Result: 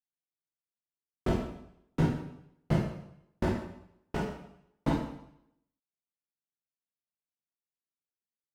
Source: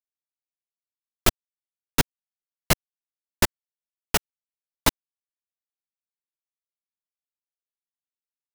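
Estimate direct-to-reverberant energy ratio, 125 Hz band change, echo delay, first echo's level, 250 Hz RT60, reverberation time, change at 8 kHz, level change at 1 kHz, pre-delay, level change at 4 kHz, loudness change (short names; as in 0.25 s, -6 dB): -5.0 dB, +1.0 dB, none, none, 0.75 s, 0.75 s, -27.0 dB, -8.0 dB, 6 ms, -20.0 dB, -7.5 dB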